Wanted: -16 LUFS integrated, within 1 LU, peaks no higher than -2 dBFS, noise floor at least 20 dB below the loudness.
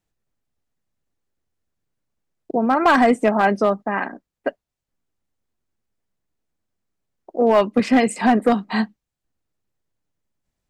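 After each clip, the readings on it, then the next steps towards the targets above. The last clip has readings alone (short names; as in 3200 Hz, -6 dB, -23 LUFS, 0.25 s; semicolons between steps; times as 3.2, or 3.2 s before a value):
clipped 0.7%; flat tops at -8.0 dBFS; loudness -18.5 LUFS; peak -8.0 dBFS; loudness target -16.0 LUFS
-> clip repair -8 dBFS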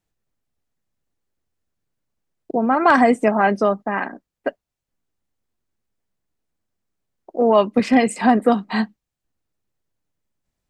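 clipped 0.0%; loudness -18.0 LUFS; peak -2.5 dBFS; loudness target -16.0 LUFS
-> gain +2 dB; limiter -2 dBFS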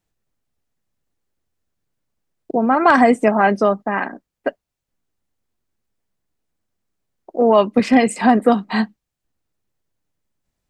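loudness -16.0 LUFS; peak -2.0 dBFS; noise floor -82 dBFS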